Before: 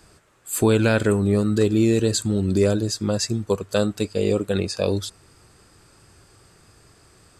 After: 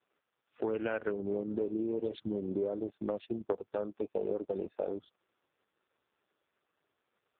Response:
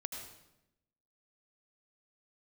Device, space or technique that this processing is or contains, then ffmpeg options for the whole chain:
voicemail: -af "afwtdn=0.0355,highpass=360,lowpass=3.2k,acompressor=threshold=-28dB:ratio=6,volume=-1.5dB" -ar 8000 -c:a libopencore_amrnb -b:a 4750

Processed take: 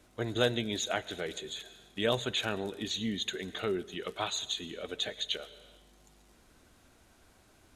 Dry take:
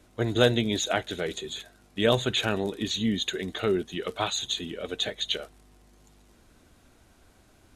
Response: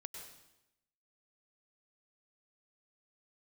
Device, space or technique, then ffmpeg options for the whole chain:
compressed reverb return: -filter_complex "[0:a]lowshelf=f=400:g=-4,asplit=2[a][b];[1:a]atrim=start_sample=2205[c];[b][c]afir=irnorm=-1:irlink=0,acompressor=threshold=-45dB:ratio=6,volume=2.5dB[d];[a][d]amix=inputs=2:normalize=0,volume=-6dB"

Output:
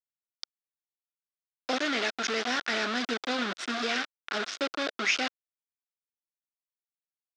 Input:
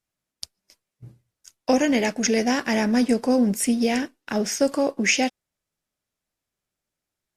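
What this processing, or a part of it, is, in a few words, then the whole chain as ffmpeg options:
hand-held game console: -af "acrusher=bits=3:mix=0:aa=0.000001,highpass=410,equalizer=f=530:t=q:w=4:g=-6,equalizer=f=910:t=q:w=4:g=-7,equalizer=f=1.4k:t=q:w=4:g=8,equalizer=f=3.6k:t=q:w=4:g=5,lowpass=f=5.3k:w=0.5412,lowpass=f=5.3k:w=1.3066,volume=-5.5dB"

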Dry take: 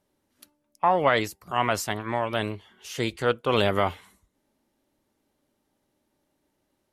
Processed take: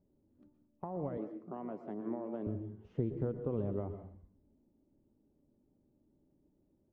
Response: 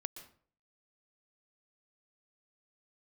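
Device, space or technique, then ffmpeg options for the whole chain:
television next door: -filter_complex "[0:a]acompressor=threshold=-32dB:ratio=5,lowpass=320[a];[1:a]atrim=start_sample=2205[b];[a][b]afir=irnorm=-1:irlink=0,asettb=1/sr,asplit=3[c][d][e];[c]atrim=end=1.174[f];[d]atrim=start=1.17:end=2.47,asetpts=PTS-STARTPTS,afade=t=in:d=0.004:c=qsin,afade=t=out:st=1.296:d=0.004:c=qsin,highpass=f=210:w=0.5412,highpass=f=210:w=1.3066[g];[e]atrim=start=2.466[h];[f][g]acrossfade=d=0.004:c1=hsin:c2=qsin[i];[i][h]acrossfade=d=0.004:c1=qsin:c2=hsin,volume=7.5dB"

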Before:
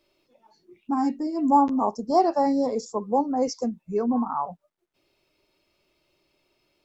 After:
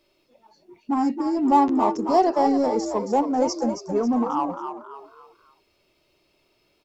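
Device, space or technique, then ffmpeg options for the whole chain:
parallel distortion: -filter_complex "[0:a]asplit=2[a][b];[b]asoftclip=type=hard:threshold=-25dB,volume=-8dB[c];[a][c]amix=inputs=2:normalize=0,asplit=5[d][e][f][g][h];[e]adelay=272,afreqshift=56,volume=-8dB[i];[f]adelay=544,afreqshift=112,volume=-16.4dB[j];[g]adelay=816,afreqshift=168,volume=-24.8dB[k];[h]adelay=1088,afreqshift=224,volume=-33.2dB[l];[d][i][j][k][l]amix=inputs=5:normalize=0"

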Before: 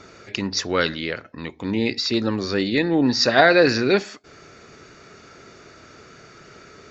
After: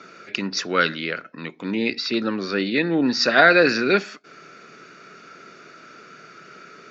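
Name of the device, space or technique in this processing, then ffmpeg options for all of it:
television speaker: -filter_complex "[0:a]highpass=f=160:w=0.5412,highpass=f=160:w=1.3066,equalizer=f=170:t=q:w=4:g=3,equalizer=f=850:t=q:w=4:g=-4,equalizer=f=1.4k:t=q:w=4:g=8,equalizer=f=2.5k:t=q:w=4:g=5,lowpass=f=6.7k:w=0.5412,lowpass=f=6.7k:w=1.3066,asettb=1/sr,asplit=3[a][b][c];[a]atrim=end=1.944[d];[b]atrim=start=1.94:end=2.91,asetpts=PTS-STARTPTS,afade=t=in:d=0.004:c=qsin,afade=t=out:st=0.966:d=0.004:c=qsin,lowpass=5.5k[e];[c]atrim=start=2.906[f];[d][e]acrossfade=d=0.004:c1=hsin:c2=qsin[g];[g][f]acrossfade=d=0.004:c1=qsin:c2=hsin,volume=-1.5dB"

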